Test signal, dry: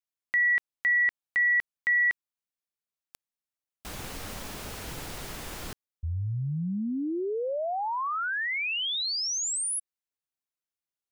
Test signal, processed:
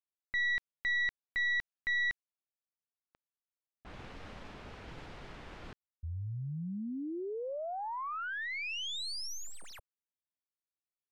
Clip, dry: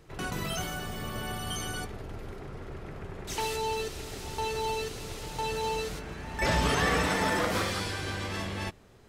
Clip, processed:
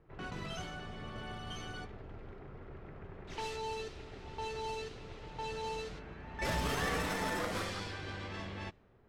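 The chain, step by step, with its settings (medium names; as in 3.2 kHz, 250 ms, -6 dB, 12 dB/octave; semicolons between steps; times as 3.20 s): tracing distortion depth 0.065 ms; level-controlled noise filter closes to 1.6 kHz, open at -23.5 dBFS; trim -8 dB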